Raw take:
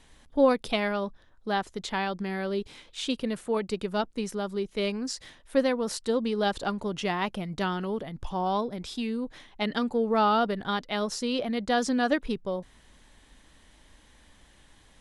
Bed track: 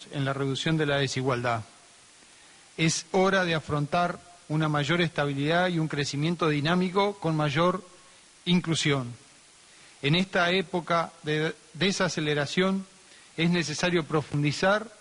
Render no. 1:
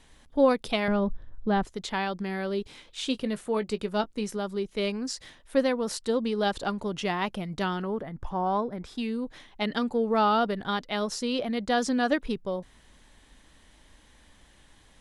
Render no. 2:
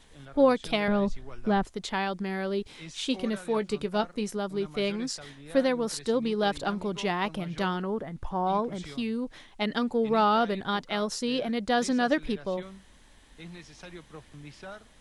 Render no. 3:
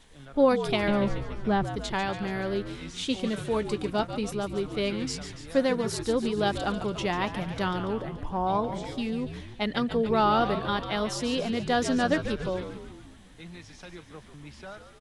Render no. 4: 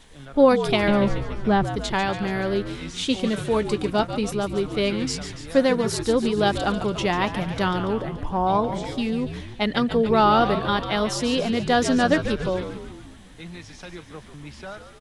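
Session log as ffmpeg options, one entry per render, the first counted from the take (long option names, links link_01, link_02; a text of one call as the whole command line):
ffmpeg -i in.wav -filter_complex "[0:a]asettb=1/sr,asplit=3[link_01][link_02][link_03];[link_01]atrim=end=0.884[link_04];[link_02]atrim=start=0.88:end=1.65,asetpts=PTS-STARTPTS,afade=type=in:duration=0.004:curve=qsin,afade=type=out:start_time=0.766:duration=0.004:curve=qsin,aemphasis=mode=reproduction:type=riaa[link_05];[link_03]atrim=start=1.646[link_06];[link_04][link_05]acrossfade=duration=0.004:curve1=hsin:curve2=qsin[link_07];[link_07][link_06]acrossfade=duration=0.004:curve1=qsin:curve2=hsin,asettb=1/sr,asplit=3[link_08][link_09][link_10];[link_08]atrim=end=3.034[link_11];[link_09]atrim=start=3.03:end=4.37,asetpts=PTS-STARTPTS,afade=type=in:duration=0.004:curve=qsin,afade=type=out:start_time=1.336:duration=0.004:curve=qsin,asplit=2[link_12][link_13];[link_13]adelay=19,volume=-13.5dB[link_14];[link_12][link_14]amix=inputs=2:normalize=0,atrim=end_sample=59094[link_15];[link_10]atrim=start=4.366[link_16];[link_11][link_15]acrossfade=duration=0.004:curve1=hsin:curve2=qsin[link_17];[link_17][link_16]acrossfade=duration=0.004:curve1=qsin:curve2=hsin,asettb=1/sr,asplit=3[link_18][link_19][link_20];[link_18]atrim=end=7.824[link_21];[link_19]atrim=start=7.82:end=8.98,asetpts=PTS-STARTPTS,afade=type=in:duration=0.004:curve=qsin,afade=type=out:start_time=1.156:duration=0.004:curve=qsin,highshelf=frequency=2300:width_type=q:width=1.5:gain=-8[link_22];[link_20]atrim=start=8.976[link_23];[link_21][link_22]acrossfade=duration=0.004:curve1=hsin:curve2=qsin[link_24];[link_24][link_23]acrossfade=duration=0.004:curve1=qsin:curve2=hsin" out.wav
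ffmpeg -i in.wav -i bed.wav -filter_complex "[1:a]volume=-20dB[link_01];[0:a][link_01]amix=inputs=2:normalize=0" out.wav
ffmpeg -i in.wav -filter_complex "[0:a]asplit=9[link_01][link_02][link_03][link_04][link_05][link_06][link_07][link_08][link_09];[link_02]adelay=143,afreqshift=-72,volume=-10dB[link_10];[link_03]adelay=286,afreqshift=-144,volume=-14.2dB[link_11];[link_04]adelay=429,afreqshift=-216,volume=-18.3dB[link_12];[link_05]adelay=572,afreqshift=-288,volume=-22.5dB[link_13];[link_06]adelay=715,afreqshift=-360,volume=-26.6dB[link_14];[link_07]adelay=858,afreqshift=-432,volume=-30.8dB[link_15];[link_08]adelay=1001,afreqshift=-504,volume=-34.9dB[link_16];[link_09]adelay=1144,afreqshift=-576,volume=-39.1dB[link_17];[link_01][link_10][link_11][link_12][link_13][link_14][link_15][link_16][link_17]amix=inputs=9:normalize=0" out.wav
ffmpeg -i in.wav -af "volume=5.5dB" out.wav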